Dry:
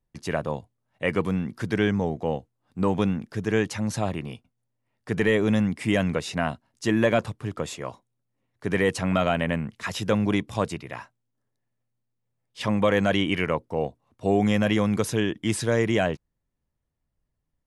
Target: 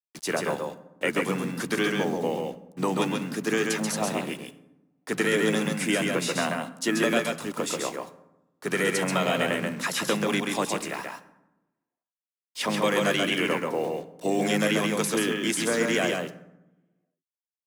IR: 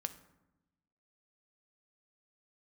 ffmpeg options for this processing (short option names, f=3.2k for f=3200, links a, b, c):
-filter_complex "[0:a]highpass=f=220:w=0.5412,highpass=f=220:w=1.3066,aemphasis=mode=production:type=50fm,acrossover=split=320|1100|2900[a][b][c][d];[a]acompressor=threshold=-33dB:ratio=4[e];[b]acompressor=threshold=-31dB:ratio=4[f];[c]acompressor=threshold=-32dB:ratio=4[g];[d]acompressor=threshold=-34dB:ratio=4[h];[e][f][g][h]amix=inputs=4:normalize=0,asplit=2[i][j];[j]asetrate=33038,aresample=44100,atempo=1.33484,volume=-8dB[k];[i][k]amix=inputs=2:normalize=0,acrusher=bits=7:mix=0:aa=0.5,asplit=2[l][m];[1:a]atrim=start_sample=2205,adelay=134[n];[m][n]afir=irnorm=-1:irlink=0,volume=-2dB[o];[l][o]amix=inputs=2:normalize=0,volume=2dB"